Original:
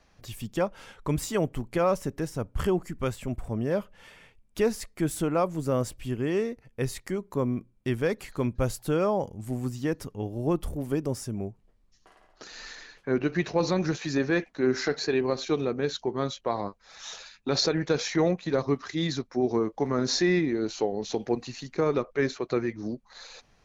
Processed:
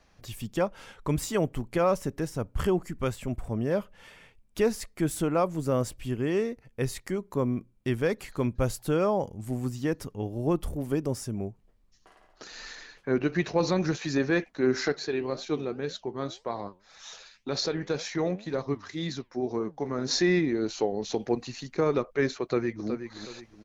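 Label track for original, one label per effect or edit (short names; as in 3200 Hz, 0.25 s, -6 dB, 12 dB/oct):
14.920000	20.110000	flange 1.9 Hz, delay 4.3 ms, depth 7.1 ms, regen +84%
22.420000	22.880000	echo throw 0.37 s, feedback 35%, level -9 dB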